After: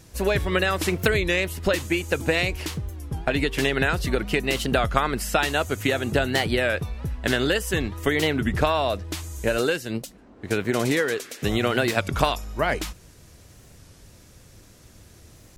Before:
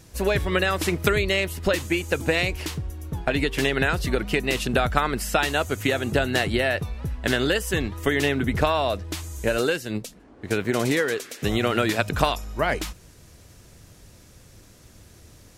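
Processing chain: record warp 33 1/3 rpm, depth 160 cents

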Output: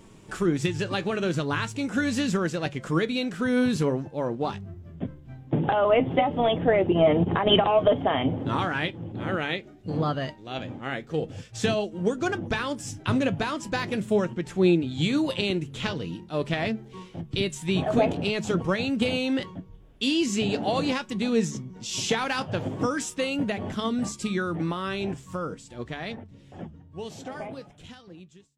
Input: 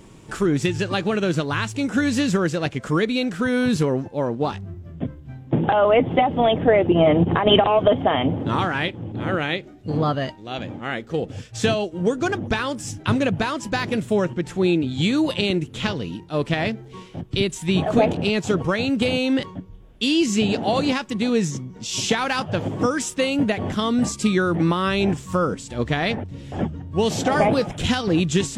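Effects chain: ending faded out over 6.13 s; de-hum 71.35 Hz, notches 3; flange 0.42 Hz, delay 4.3 ms, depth 3.7 ms, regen +75%

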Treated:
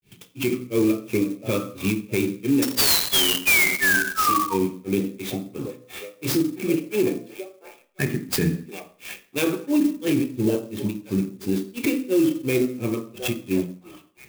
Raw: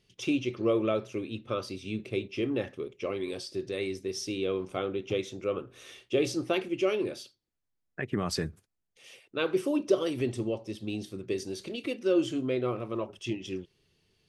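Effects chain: resonant low shelf 330 Hz +7 dB, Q 1.5; delay with a stepping band-pass 0.556 s, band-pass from 660 Hz, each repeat 0.7 oct, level -10.5 dB; painted sound fall, 2.6–4.54, 920–5600 Hz -19 dBFS; dynamic EQ 5100 Hz, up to +8 dB, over -45 dBFS, Q 3; grains 0.262 s, grains 2.9/s, spray 21 ms, pitch spread up and down by 0 st; reverb RT60 0.45 s, pre-delay 3 ms, DRR 7 dB; limiter -20 dBFS, peak gain reduction 19.5 dB; clock jitter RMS 0.042 ms; gain +7.5 dB

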